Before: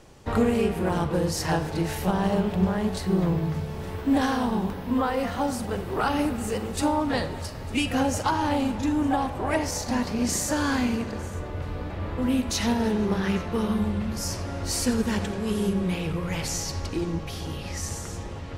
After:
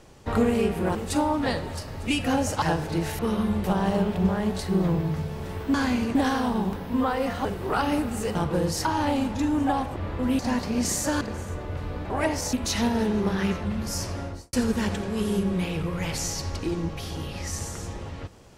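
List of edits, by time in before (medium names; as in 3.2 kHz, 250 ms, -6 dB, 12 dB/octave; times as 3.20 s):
0.95–1.45 s: swap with 6.62–8.29 s
5.42–5.72 s: delete
9.40–9.83 s: swap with 11.95–12.38 s
10.65–11.06 s: move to 4.12 s
13.50–13.95 s: move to 2.02 s
14.48–14.83 s: studio fade out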